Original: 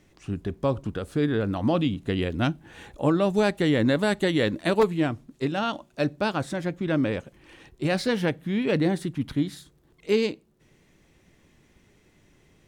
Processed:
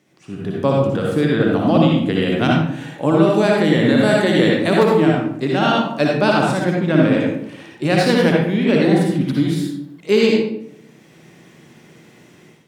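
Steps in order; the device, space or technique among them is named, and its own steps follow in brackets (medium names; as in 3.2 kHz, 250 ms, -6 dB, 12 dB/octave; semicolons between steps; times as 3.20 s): far laptop microphone (reverberation RT60 0.75 s, pre-delay 54 ms, DRR -2.5 dB; high-pass 130 Hz 24 dB/octave; level rider); trim -1 dB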